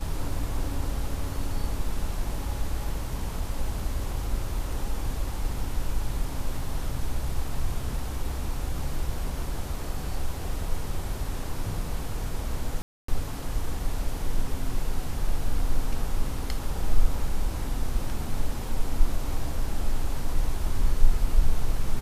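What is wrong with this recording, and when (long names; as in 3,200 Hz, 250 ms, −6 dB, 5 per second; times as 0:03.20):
0:12.82–0:13.08: drop-out 264 ms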